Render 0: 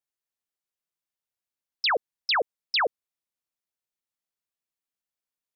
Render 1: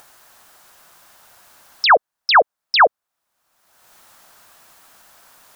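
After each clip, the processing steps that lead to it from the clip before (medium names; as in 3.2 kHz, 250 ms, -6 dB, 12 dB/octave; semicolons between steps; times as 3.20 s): high-order bell 1 kHz +8.5 dB; in parallel at +1 dB: upward compressor, threshold -21 dBFS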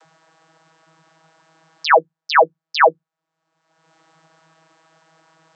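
vocoder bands 32, saw 161 Hz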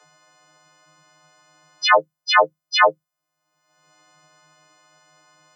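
partials quantised in pitch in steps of 3 st; trim -4 dB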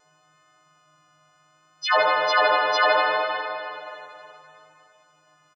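frequency-shifting echo 83 ms, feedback 45%, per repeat -48 Hz, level -22 dB; spring tank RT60 2.9 s, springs 46/51 ms, chirp 35 ms, DRR -5.5 dB; vibrato 0.68 Hz 9 cents; trim -7.5 dB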